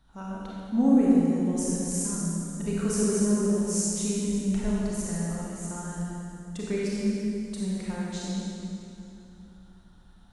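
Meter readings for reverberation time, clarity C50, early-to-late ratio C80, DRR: 2.8 s, -4.5 dB, -2.5 dB, -6.0 dB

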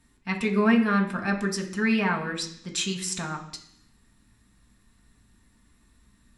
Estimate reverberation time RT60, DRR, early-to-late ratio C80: 0.65 s, 1.0 dB, 12.0 dB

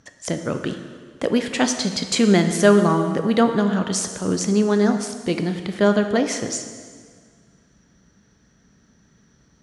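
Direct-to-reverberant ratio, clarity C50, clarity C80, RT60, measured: 6.5 dB, 8.5 dB, 9.5 dB, 1.8 s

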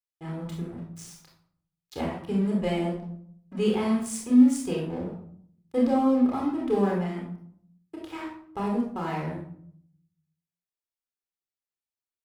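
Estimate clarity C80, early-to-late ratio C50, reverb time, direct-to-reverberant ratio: 7.5 dB, 3.0 dB, 0.60 s, -2.5 dB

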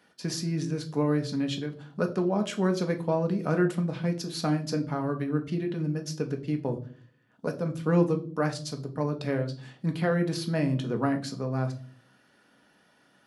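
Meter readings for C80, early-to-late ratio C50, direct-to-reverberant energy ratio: 19.5 dB, 14.5 dB, 4.5 dB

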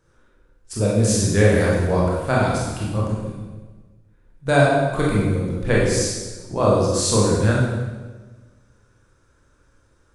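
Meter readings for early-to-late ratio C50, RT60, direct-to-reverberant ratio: -0.5 dB, 1.3 s, -5.5 dB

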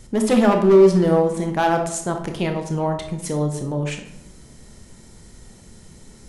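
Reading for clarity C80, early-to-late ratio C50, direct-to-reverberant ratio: 10.5 dB, 7.0 dB, 4.0 dB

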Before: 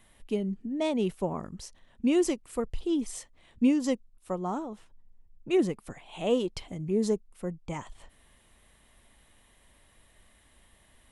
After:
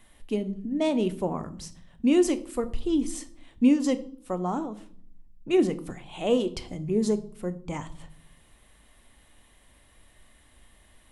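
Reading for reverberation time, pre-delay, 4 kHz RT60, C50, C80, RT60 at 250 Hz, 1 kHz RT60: 0.55 s, 3 ms, 0.45 s, 17.0 dB, 20.0 dB, 1.0 s, 0.50 s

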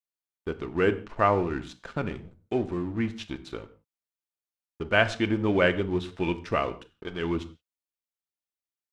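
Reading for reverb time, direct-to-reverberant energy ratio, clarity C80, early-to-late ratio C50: no single decay rate, 9.0 dB, 18.5 dB, 16.0 dB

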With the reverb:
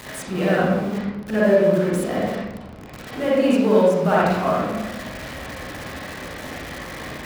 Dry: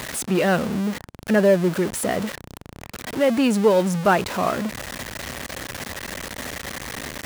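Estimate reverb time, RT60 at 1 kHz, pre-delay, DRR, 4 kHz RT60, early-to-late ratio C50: 1.0 s, 1.0 s, 36 ms, -7.5 dB, 0.60 s, -4.5 dB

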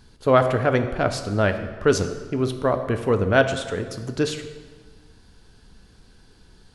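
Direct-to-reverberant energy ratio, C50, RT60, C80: 7.0 dB, 9.5 dB, 1.5 s, 11.0 dB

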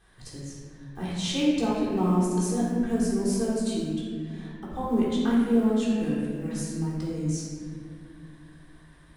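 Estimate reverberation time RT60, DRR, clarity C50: 2.3 s, -9.0 dB, -1.5 dB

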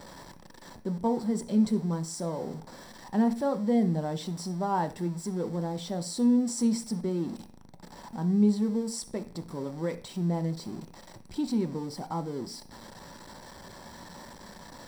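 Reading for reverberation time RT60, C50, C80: 0.45 s, 15.0 dB, 20.0 dB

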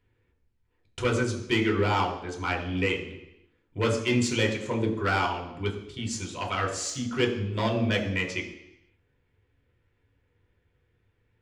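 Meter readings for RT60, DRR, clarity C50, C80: 0.85 s, 0.0 dB, 8.0 dB, 9.5 dB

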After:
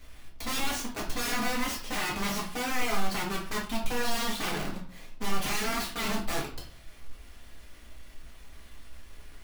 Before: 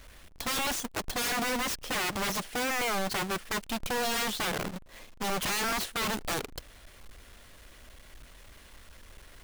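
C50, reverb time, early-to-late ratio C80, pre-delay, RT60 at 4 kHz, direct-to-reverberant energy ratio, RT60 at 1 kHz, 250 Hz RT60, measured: 7.0 dB, 0.45 s, 12.0 dB, 4 ms, 0.35 s, -4.0 dB, 0.45 s, 0.60 s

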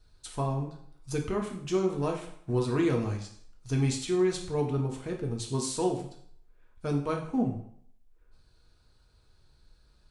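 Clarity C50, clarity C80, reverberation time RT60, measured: 8.0 dB, 11.5 dB, 0.65 s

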